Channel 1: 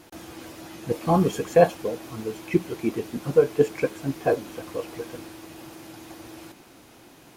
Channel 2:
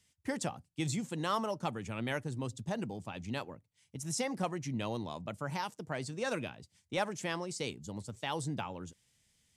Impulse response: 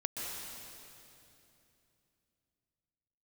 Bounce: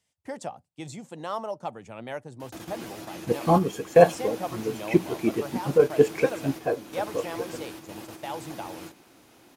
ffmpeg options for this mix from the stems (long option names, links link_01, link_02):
-filter_complex "[0:a]adelay=2400,volume=1.5dB[link_01];[1:a]equalizer=frequency=680:width_type=o:width=1.3:gain=11,volume=-5.5dB,asplit=2[link_02][link_03];[link_03]apad=whole_len=430651[link_04];[link_01][link_04]sidechaingate=range=-6dB:threshold=-48dB:ratio=16:detection=peak[link_05];[link_05][link_02]amix=inputs=2:normalize=0,lowshelf=frequency=78:gain=-7"